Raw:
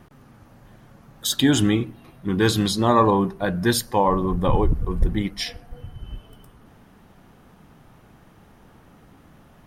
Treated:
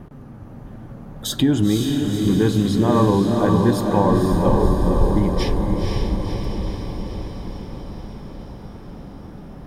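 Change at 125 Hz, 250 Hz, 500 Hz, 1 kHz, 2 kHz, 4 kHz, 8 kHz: +5.5, +5.0, +3.5, −0.5, −4.0, −2.5, −4.0 decibels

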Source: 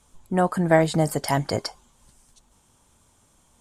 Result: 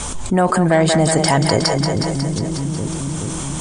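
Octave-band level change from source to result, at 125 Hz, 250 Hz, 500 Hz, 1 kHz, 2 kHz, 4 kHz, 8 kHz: +9.5, +8.5, +6.5, +7.0, +7.0, +13.0, +14.5 decibels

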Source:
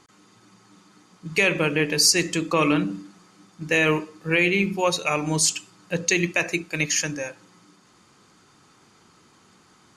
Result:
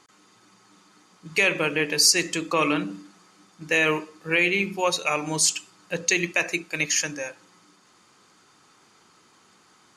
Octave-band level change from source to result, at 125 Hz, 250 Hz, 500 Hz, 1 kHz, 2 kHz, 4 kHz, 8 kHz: −7.0, −4.5, −2.0, −0.5, 0.0, 0.0, 0.0 decibels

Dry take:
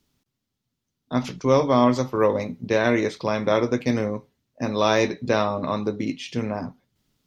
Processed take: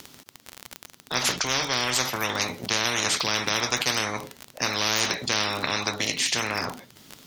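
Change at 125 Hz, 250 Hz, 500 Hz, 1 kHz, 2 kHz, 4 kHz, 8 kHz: −8.0 dB, −11.5 dB, −11.5 dB, −3.0 dB, +4.5 dB, +11.0 dB, can't be measured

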